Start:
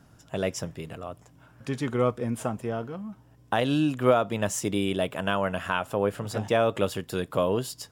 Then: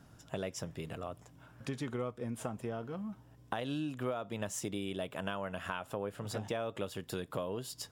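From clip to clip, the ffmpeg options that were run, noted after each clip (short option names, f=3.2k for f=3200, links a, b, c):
-af "equalizer=f=3.6k:t=o:w=0.3:g=2,acompressor=threshold=-33dB:ratio=4,volume=-2.5dB"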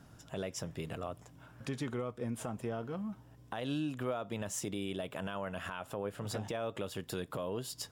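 -af "alimiter=level_in=4.5dB:limit=-24dB:level=0:latency=1:release=22,volume=-4.5dB,volume=1.5dB"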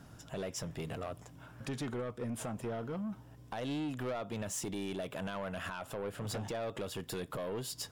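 -af "asoftclip=type=tanh:threshold=-35.5dB,volume=3dB"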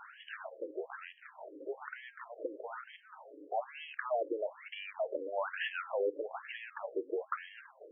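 -af "bandreject=f=268.9:t=h:w=4,bandreject=f=537.8:t=h:w=4,bandreject=f=806.7:t=h:w=4,bandreject=f=1.0756k:t=h:w=4,bandreject=f=1.3445k:t=h:w=4,bandreject=f=1.6134k:t=h:w=4,bandreject=f=1.8823k:t=h:w=4,bandreject=f=2.1512k:t=h:w=4,bandreject=f=2.4201k:t=h:w=4,bandreject=f=2.689k:t=h:w=4,bandreject=f=2.9579k:t=h:w=4,bandreject=f=3.2268k:t=h:w=4,bandreject=f=3.4957k:t=h:w=4,bandreject=f=3.7646k:t=h:w=4,bandreject=f=4.0335k:t=h:w=4,bandreject=f=4.3024k:t=h:w=4,bandreject=f=4.5713k:t=h:w=4,bandreject=f=4.8402k:t=h:w=4,bandreject=f=5.1091k:t=h:w=4,bandreject=f=5.378k:t=h:w=4,bandreject=f=5.6469k:t=h:w=4,bandreject=f=5.9158k:t=h:w=4,bandreject=f=6.1847k:t=h:w=4,bandreject=f=6.4536k:t=h:w=4,bandreject=f=6.7225k:t=h:w=4,bandreject=f=6.9914k:t=h:w=4,bandreject=f=7.2603k:t=h:w=4,bandreject=f=7.5292k:t=h:w=4,bandreject=f=7.7981k:t=h:w=4,bandreject=f=8.067k:t=h:w=4,bandreject=f=8.3359k:t=h:w=4,bandreject=f=8.6048k:t=h:w=4,bandreject=f=8.8737k:t=h:w=4,bandreject=f=9.1426k:t=h:w=4,bandreject=f=9.4115k:t=h:w=4,bandreject=f=9.6804k:t=h:w=4,acompressor=threshold=-45dB:ratio=3,afftfilt=real='re*between(b*sr/1024,390*pow(2400/390,0.5+0.5*sin(2*PI*1.1*pts/sr))/1.41,390*pow(2400/390,0.5+0.5*sin(2*PI*1.1*pts/sr))*1.41)':imag='im*between(b*sr/1024,390*pow(2400/390,0.5+0.5*sin(2*PI*1.1*pts/sr))/1.41,390*pow(2400/390,0.5+0.5*sin(2*PI*1.1*pts/sr))*1.41)':win_size=1024:overlap=0.75,volume=15dB"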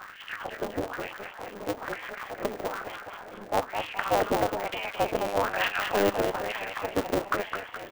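-filter_complex "[0:a]asplit=2[a][b];[b]asplit=6[c][d][e][f][g][h];[c]adelay=210,afreqshift=59,volume=-6dB[i];[d]adelay=420,afreqshift=118,volume=-11.8dB[j];[e]adelay=630,afreqshift=177,volume=-17.7dB[k];[f]adelay=840,afreqshift=236,volume=-23.5dB[l];[g]adelay=1050,afreqshift=295,volume=-29.4dB[m];[h]adelay=1260,afreqshift=354,volume=-35.2dB[n];[i][j][k][l][m][n]amix=inputs=6:normalize=0[o];[a][o]amix=inputs=2:normalize=0,aeval=exprs='val(0)*sgn(sin(2*PI*100*n/s))':c=same,volume=8.5dB"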